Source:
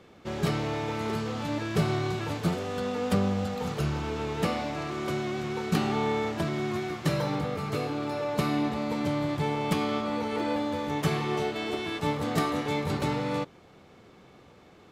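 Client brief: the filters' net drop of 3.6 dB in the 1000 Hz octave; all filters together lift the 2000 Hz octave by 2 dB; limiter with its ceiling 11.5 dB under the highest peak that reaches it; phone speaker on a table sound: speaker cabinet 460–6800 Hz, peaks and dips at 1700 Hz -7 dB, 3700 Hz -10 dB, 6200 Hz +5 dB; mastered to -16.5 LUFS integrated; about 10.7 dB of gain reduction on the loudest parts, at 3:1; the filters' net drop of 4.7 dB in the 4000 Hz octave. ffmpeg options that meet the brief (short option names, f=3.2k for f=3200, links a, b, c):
-af "equalizer=f=1k:t=o:g=-6,equalizer=f=2k:t=o:g=8.5,equalizer=f=4k:t=o:g=-4,acompressor=threshold=-36dB:ratio=3,alimiter=level_in=9.5dB:limit=-24dB:level=0:latency=1,volume=-9.5dB,highpass=f=460:w=0.5412,highpass=f=460:w=1.3066,equalizer=f=1.7k:t=q:w=4:g=-7,equalizer=f=3.7k:t=q:w=4:g=-10,equalizer=f=6.2k:t=q:w=4:g=5,lowpass=f=6.8k:w=0.5412,lowpass=f=6.8k:w=1.3066,volume=30dB"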